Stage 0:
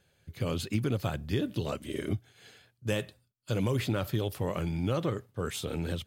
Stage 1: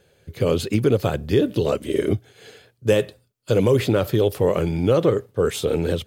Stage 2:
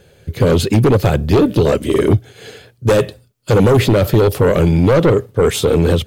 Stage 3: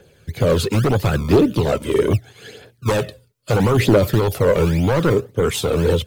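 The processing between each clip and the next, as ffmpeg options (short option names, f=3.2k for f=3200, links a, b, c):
-af "equalizer=f=450:t=o:w=0.81:g=10,volume=7.5dB"
-af "aeval=exprs='0.531*(cos(1*acos(clip(val(0)/0.531,-1,1)))-cos(1*PI/2))+0.188*(cos(5*acos(clip(val(0)/0.531,-1,1)))-cos(5*PI/2))':c=same,lowshelf=f=210:g=5.5"
-filter_complex "[0:a]acrossover=split=190[a][b];[a]acrusher=samples=26:mix=1:aa=0.000001:lfo=1:lforange=26:lforate=1.8[c];[b]aphaser=in_gain=1:out_gain=1:delay=2.3:decay=0.5:speed=0.76:type=triangular[d];[c][d]amix=inputs=2:normalize=0,volume=-4.5dB"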